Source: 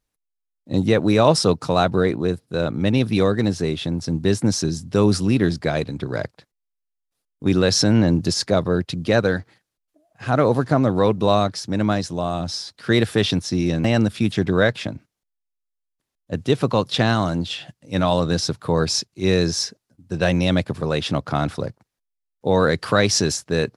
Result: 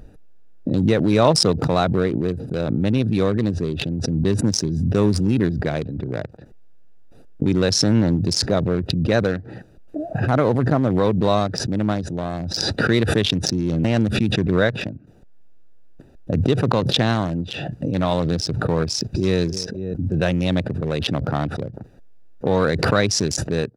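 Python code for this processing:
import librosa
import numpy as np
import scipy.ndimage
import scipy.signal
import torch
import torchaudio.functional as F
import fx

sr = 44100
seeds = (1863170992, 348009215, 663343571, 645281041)

y = fx.echo_throw(x, sr, start_s=18.87, length_s=0.52, ms=270, feedback_pct=20, wet_db=-14.5)
y = fx.wiener(y, sr, points=41)
y = fx.pre_swell(y, sr, db_per_s=23.0)
y = y * librosa.db_to_amplitude(-1.0)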